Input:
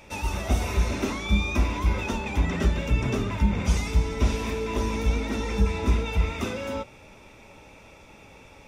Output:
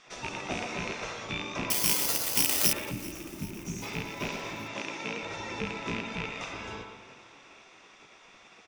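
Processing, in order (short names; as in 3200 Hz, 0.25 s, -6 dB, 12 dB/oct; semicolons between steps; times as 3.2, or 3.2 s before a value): rattling part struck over -23 dBFS, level -17 dBFS; spectral gate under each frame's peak -10 dB weak; 4.74–5.23 HPF 190 Hz 12 dB/oct; speakerphone echo 0.12 s, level -6 dB; 2.91–3.83 spectral gain 390–5500 Hz -15 dB; LPF 7200 Hz 24 dB/oct; spring tank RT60 1.5 s, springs 44 ms, chirp 55 ms, DRR 11.5 dB; in parallel at 0 dB: compressor, threshold -42 dBFS, peak gain reduction 16.5 dB; 1.7–2.73 on the sum: careless resampling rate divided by 8×, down none, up zero stuff; on a send: frequency-shifting echo 0.39 s, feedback 63%, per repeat +37 Hz, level -20 dB; on the sum: gain -6 dB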